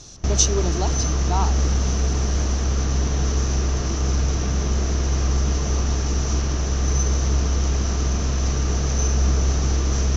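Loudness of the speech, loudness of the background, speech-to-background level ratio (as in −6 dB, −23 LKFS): −25.0 LKFS, −22.5 LKFS, −2.5 dB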